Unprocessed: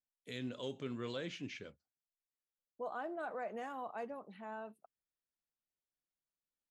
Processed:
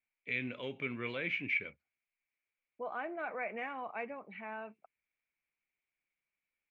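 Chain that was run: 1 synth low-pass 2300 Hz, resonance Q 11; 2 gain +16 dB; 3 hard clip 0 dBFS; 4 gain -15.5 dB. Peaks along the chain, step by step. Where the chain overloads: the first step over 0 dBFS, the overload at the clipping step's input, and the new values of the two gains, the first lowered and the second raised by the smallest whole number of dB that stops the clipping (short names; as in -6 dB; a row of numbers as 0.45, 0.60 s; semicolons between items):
-22.0, -6.0, -6.0, -21.5 dBFS; no overload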